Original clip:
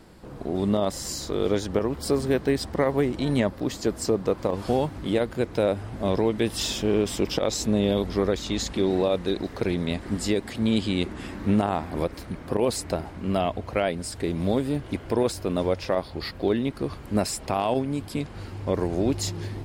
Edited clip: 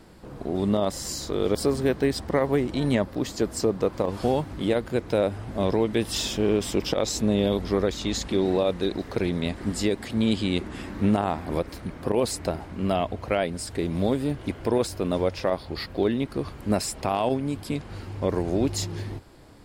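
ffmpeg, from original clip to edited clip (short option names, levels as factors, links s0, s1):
-filter_complex "[0:a]asplit=2[s0][s1];[s0]atrim=end=1.552[s2];[s1]atrim=start=1.998[s3];[s2][s3]acrossfade=d=0.004:c1=hsin:c2=hsin"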